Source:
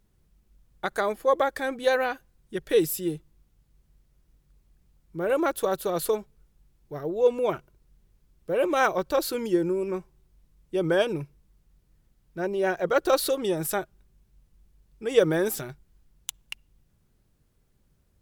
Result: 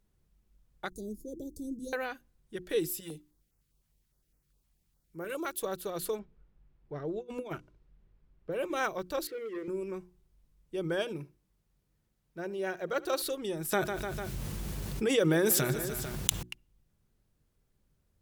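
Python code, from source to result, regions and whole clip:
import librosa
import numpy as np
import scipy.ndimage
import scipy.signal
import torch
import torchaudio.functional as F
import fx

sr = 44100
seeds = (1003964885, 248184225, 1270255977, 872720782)

y = fx.chain(x, sr, fx.ellip_bandstop(low_hz=330.0, high_hz=5800.0, order=3, stop_db=70),
    fx.low_shelf(hz=310.0, db=9.0), at=(0.9, 1.93))
y = fx.chain(y, sr, fx.tilt_eq(slope=1.5),
    fx.filter_held_notch(hz=9.8, low_hz=400.0, high_hz=3500.0), at=(3.0, 5.62))
y = fx.chain(y, sr, fx.env_lowpass(base_hz=2300.0, full_db=-22.0),
    fx.over_compress(threshold_db=-28.0, ratio=-0.5), at=(6.19, 8.52))
y = fx.chain(y, sr, fx.zero_step(step_db=-40.5),
    fx.double_bandpass(hz=940.0, octaves=2.1),
    fx.leveller(passes=2), at=(9.27, 9.68))
y = fx.chain(y, sr, fx.highpass(hz=100.0, slope=6),
    fx.echo_single(ms=72, db=-21.0), at=(10.99, 13.22))
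y = fx.chain(y, sr, fx.highpass(hz=90.0, slope=12),
    fx.echo_feedback(ms=149, feedback_pct=50, wet_db=-22.5),
    fx.env_flatten(amount_pct=70), at=(13.72, 16.43))
y = fx.hum_notches(y, sr, base_hz=60, count=6)
y = fx.dynamic_eq(y, sr, hz=750.0, q=0.78, threshold_db=-35.0, ratio=4.0, max_db=-5)
y = y * 10.0 ** (-6.0 / 20.0)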